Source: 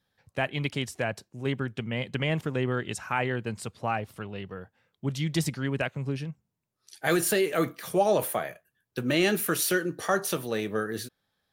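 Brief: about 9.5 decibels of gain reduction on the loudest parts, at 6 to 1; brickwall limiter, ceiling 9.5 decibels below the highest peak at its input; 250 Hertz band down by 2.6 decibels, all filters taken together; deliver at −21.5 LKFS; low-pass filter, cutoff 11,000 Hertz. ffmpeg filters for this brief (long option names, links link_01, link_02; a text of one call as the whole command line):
ffmpeg -i in.wav -af "lowpass=11000,equalizer=frequency=250:width_type=o:gain=-4,acompressor=threshold=-30dB:ratio=6,volume=16.5dB,alimiter=limit=-10dB:level=0:latency=1" out.wav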